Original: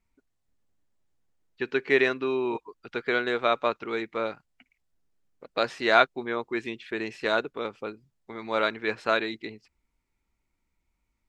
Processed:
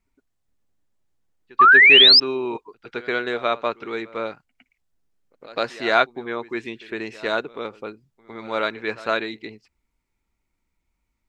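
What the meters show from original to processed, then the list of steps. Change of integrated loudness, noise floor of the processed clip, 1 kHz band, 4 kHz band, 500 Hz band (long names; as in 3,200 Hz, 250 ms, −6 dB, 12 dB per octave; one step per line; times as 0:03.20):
+11.5 dB, −76 dBFS, +7.0 dB, +18.5 dB, +1.5 dB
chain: echo ahead of the sound 108 ms −18.5 dB
sound drawn into the spectrogram rise, 0:01.59–0:02.20, 1,100–5,300 Hz −12 dBFS
level +1.5 dB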